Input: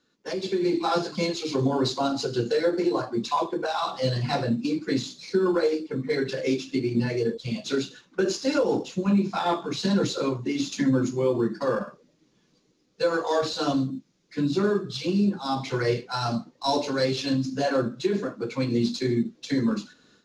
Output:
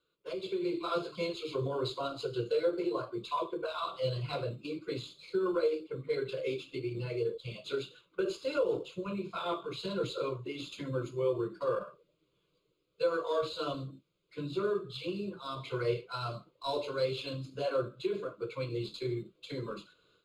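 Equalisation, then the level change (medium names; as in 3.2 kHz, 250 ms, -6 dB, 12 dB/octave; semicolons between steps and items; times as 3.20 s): static phaser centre 1.2 kHz, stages 8; -5.5 dB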